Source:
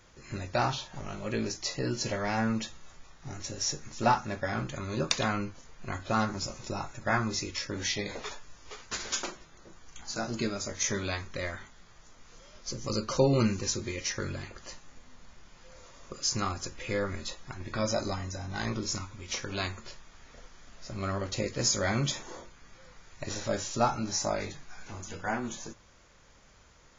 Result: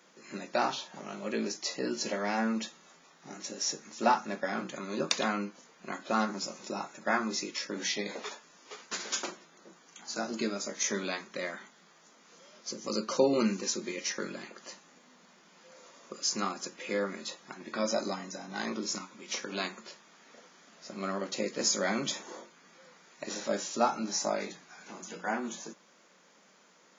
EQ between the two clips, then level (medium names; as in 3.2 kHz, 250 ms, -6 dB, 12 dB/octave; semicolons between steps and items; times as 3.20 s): elliptic high-pass 180 Hz, stop band 50 dB; 0.0 dB